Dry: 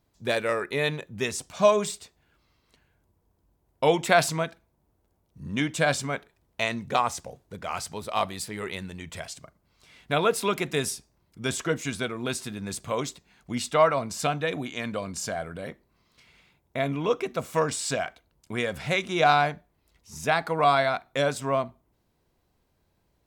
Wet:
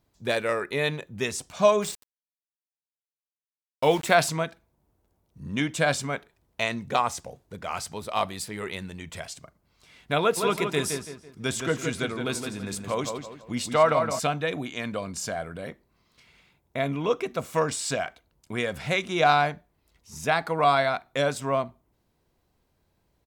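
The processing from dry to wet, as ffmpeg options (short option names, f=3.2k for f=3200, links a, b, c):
-filter_complex "[0:a]asplit=3[a][b][c];[a]afade=t=out:st=1.81:d=0.02[d];[b]aeval=exprs='val(0)*gte(abs(val(0)),0.0178)':c=same,afade=t=in:st=1.81:d=0.02,afade=t=out:st=4.14:d=0.02[e];[c]afade=t=in:st=4.14:d=0.02[f];[d][e][f]amix=inputs=3:normalize=0,asplit=3[g][h][i];[g]afade=t=out:st=10.36:d=0.02[j];[h]asplit=2[k][l];[l]adelay=166,lowpass=f=2.9k:p=1,volume=-5.5dB,asplit=2[m][n];[n]adelay=166,lowpass=f=2.9k:p=1,volume=0.38,asplit=2[o][p];[p]adelay=166,lowpass=f=2.9k:p=1,volume=0.38,asplit=2[q][r];[r]adelay=166,lowpass=f=2.9k:p=1,volume=0.38,asplit=2[s][t];[t]adelay=166,lowpass=f=2.9k:p=1,volume=0.38[u];[k][m][o][q][s][u]amix=inputs=6:normalize=0,afade=t=in:st=10.36:d=0.02,afade=t=out:st=14.18:d=0.02[v];[i]afade=t=in:st=14.18:d=0.02[w];[j][v][w]amix=inputs=3:normalize=0"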